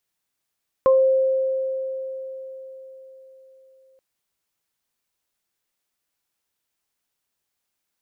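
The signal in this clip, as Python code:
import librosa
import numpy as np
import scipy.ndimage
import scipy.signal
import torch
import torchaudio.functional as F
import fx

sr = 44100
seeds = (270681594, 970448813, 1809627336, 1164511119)

y = fx.additive(sr, length_s=3.13, hz=528.0, level_db=-11.5, upper_db=(-7.0,), decay_s=4.4, upper_decays_s=(0.26,))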